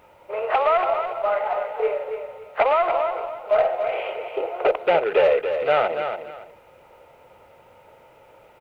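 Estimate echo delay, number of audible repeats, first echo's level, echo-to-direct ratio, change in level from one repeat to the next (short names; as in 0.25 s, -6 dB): 0.284 s, 2, -7.5 dB, -7.5 dB, -12.5 dB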